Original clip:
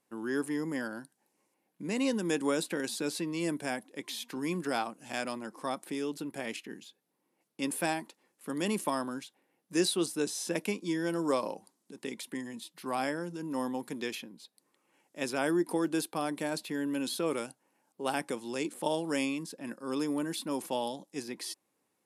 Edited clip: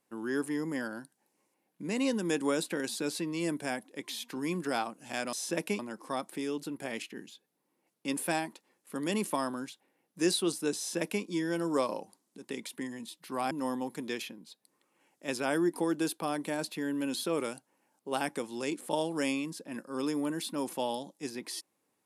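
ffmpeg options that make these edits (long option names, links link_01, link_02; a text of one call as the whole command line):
ffmpeg -i in.wav -filter_complex "[0:a]asplit=4[link_01][link_02][link_03][link_04];[link_01]atrim=end=5.332[link_05];[link_02]atrim=start=10.308:end=10.772[link_06];[link_03]atrim=start=5.328:end=13.052[link_07];[link_04]atrim=start=13.438[link_08];[link_05][link_06]acrossfade=duration=0.004:curve1=hsin:curve2=hsin[link_09];[link_09][link_07]acrossfade=duration=0.004:curve1=hsin:curve2=hsin[link_10];[link_10][link_08]acrossfade=duration=0.004:curve1=hsin:curve2=hsin" out.wav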